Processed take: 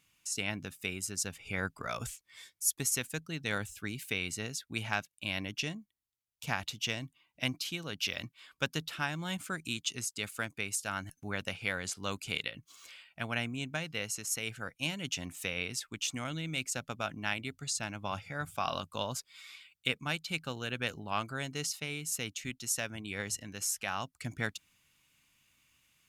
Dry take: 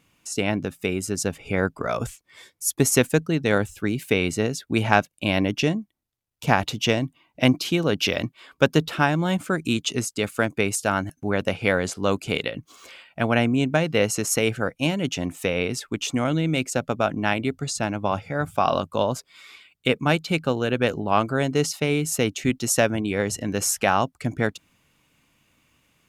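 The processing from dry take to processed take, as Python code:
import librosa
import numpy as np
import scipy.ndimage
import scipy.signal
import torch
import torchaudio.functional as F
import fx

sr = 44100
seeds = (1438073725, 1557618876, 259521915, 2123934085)

y = fx.tone_stack(x, sr, knobs='5-5-5')
y = fx.rider(y, sr, range_db=4, speed_s=0.5)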